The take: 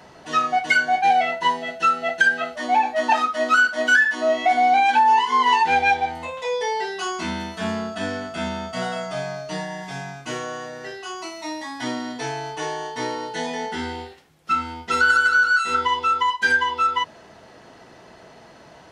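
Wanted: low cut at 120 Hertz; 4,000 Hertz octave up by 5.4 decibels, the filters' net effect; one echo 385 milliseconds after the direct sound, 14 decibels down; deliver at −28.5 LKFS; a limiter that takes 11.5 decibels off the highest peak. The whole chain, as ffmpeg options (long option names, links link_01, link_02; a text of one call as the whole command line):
ffmpeg -i in.wav -af "highpass=120,equalizer=frequency=4000:width_type=o:gain=7.5,alimiter=limit=-15dB:level=0:latency=1,aecho=1:1:385:0.2,volume=-4.5dB" out.wav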